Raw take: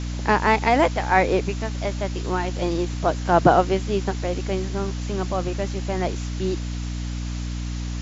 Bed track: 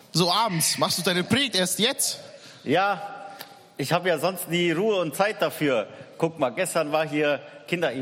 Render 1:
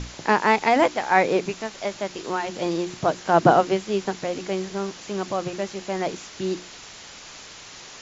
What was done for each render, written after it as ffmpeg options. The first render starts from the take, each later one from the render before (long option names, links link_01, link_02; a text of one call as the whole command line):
ffmpeg -i in.wav -af "bandreject=frequency=60:width_type=h:width=6,bandreject=frequency=120:width_type=h:width=6,bandreject=frequency=180:width_type=h:width=6,bandreject=frequency=240:width_type=h:width=6,bandreject=frequency=300:width_type=h:width=6,bandreject=frequency=360:width_type=h:width=6" out.wav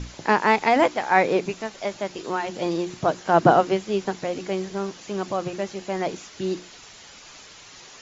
ffmpeg -i in.wav -af "afftdn=noise_reduction=6:noise_floor=-43" out.wav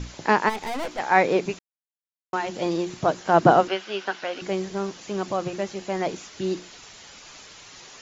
ffmpeg -i in.wav -filter_complex "[0:a]asplit=3[link_01][link_02][link_03];[link_01]afade=type=out:start_time=0.48:duration=0.02[link_04];[link_02]aeval=exprs='(tanh(25.1*val(0)+0.45)-tanh(0.45))/25.1':channel_layout=same,afade=type=in:start_time=0.48:duration=0.02,afade=type=out:start_time=0.98:duration=0.02[link_05];[link_03]afade=type=in:start_time=0.98:duration=0.02[link_06];[link_04][link_05][link_06]amix=inputs=3:normalize=0,asettb=1/sr,asplit=3[link_07][link_08][link_09];[link_07]atrim=end=3.684[link_10];[link_08]atrim=start=3.68:end=4.42,asetpts=PTS-STARTPTS,afade=type=in:duration=0.004:curve=qsin,afade=type=out:start_time=0.736:duration=0.004:curve=qsin,highpass=430,equalizer=frequency=450:width_type=q:width=4:gain=-5,equalizer=frequency=1500:width_type=q:width=4:gain=10,equalizer=frequency=2900:width_type=q:width=4:gain=7,lowpass=frequency=5700:width=0.5412,lowpass=frequency=5700:width=1.3066[link_11];[link_09]atrim=start=4.416[link_12];[link_10][link_11]acrossfade=duration=0.004:curve1=hsin:curve2=qsin[link_13];[link_13][link_12]acrossfade=duration=0.004:curve1=qsin:curve2=hsin,asplit=3[link_14][link_15][link_16];[link_14]atrim=end=1.59,asetpts=PTS-STARTPTS,afade=type=out:start_time=1.586:duration=0.004:curve=hsin[link_17];[link_15]atrim=start=1.59:end=2.33,asetpts=PTS-STARTPTS,volume=0[link_18];[link_16]atrim=start=2.33,asetpts=PTS-STARTPTS,afade=type=in:duration=0.004:curve=hsin[link_19];[link_17][link_18][link_19]concat=n=3:v=0:a=1" out.wav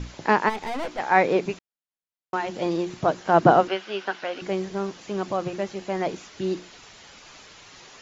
ffmpeg -i in.wav -af "highshelf=frequency=6700:gain=-10" out.wav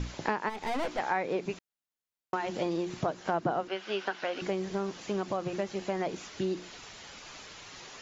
ffmpeg -i in.wav -af "acompressor=threshold=-28dB:ratio=5" out.wav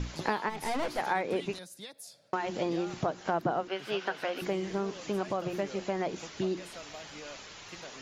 ffmpeg -i in.wav -i bed.wav -filter_complex "[1:a]volume=-23.5dB[link_01];[0:a][link_01]amix=inputs=2:normalize=0" out.wav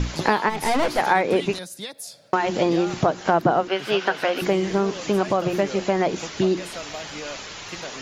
ffmpeg -i in.wav -af "volume=11dB,alimiter=limit=-3dB:level=0:latency=1" out.wav